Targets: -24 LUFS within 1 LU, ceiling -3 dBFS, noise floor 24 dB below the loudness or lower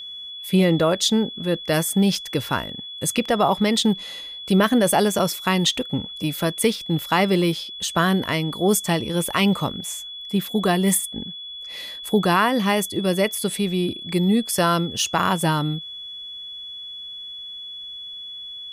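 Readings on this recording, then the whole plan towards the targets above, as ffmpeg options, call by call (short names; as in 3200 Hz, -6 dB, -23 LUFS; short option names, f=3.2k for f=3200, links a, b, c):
steady tone 3400 Hz; tone level -33 dBFS; loudness -21.5 LUFS; peak -6.5 dBFS; loudness target -24.0 LUFS
-> -af "bandreject=f=3.4k:w=30"
-af "volume=-2.5dB"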